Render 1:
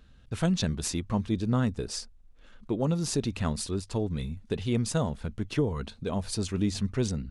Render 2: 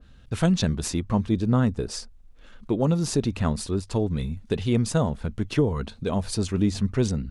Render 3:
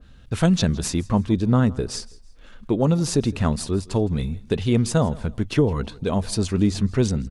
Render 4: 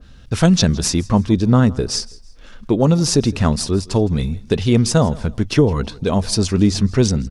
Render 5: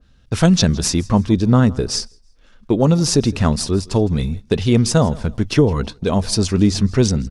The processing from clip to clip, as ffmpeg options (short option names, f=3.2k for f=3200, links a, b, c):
-af "adynamicequalizer=threshold=0.00447:dfrequency=1800:dqfactor=0.7:tfrequency=1800:tqfactor=0.7:attack=5:release=100:ratio=0.375:range=3:mode=cutabove:tftype=highshelf,volume=5dB"
-af "aecho=1:1:163|326:0.0794|0.0262,volume=3dB"
-af "equalizer=f=5.4k:t=o:w=0.5:g=7,volume=5dB"
-af "agate=range=-10dB:threshold=-27dB:ratio=16:detection=peak"